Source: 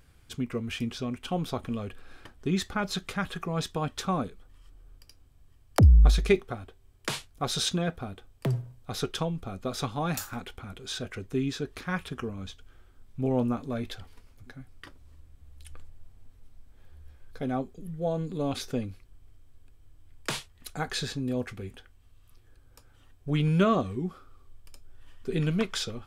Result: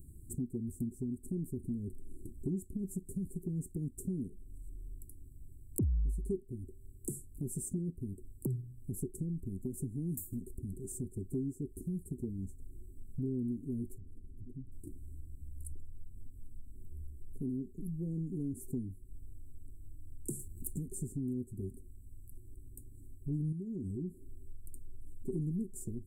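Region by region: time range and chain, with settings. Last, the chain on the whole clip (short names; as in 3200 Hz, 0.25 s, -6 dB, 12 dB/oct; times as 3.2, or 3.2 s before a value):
13.98–14.72 LPF 1900 Hz 6 dB/oct + compressor 2.5:1, threshold -49 dBFS
20.39–20.79 sample leveller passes 2 + mismatched tape noise reduction encoder only
23.52–24.1 compressor, threshold -31 dBFS + core saturation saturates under 150 Hz
whole clip: Chebyshev band-stop 380–7900 Hz, order 5; compressor 3:1, threshold -46 dBFS; gain +7.5 dB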